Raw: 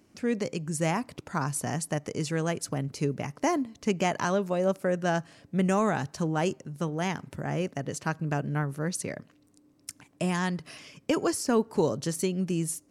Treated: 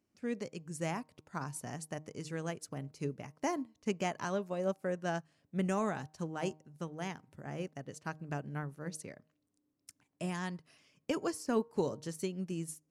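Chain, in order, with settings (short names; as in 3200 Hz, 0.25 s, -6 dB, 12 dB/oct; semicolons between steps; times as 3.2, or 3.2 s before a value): de-hum 154.9 Hz, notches 7; upward expander 1.5:1, over -46 dBFS; gain -6 dB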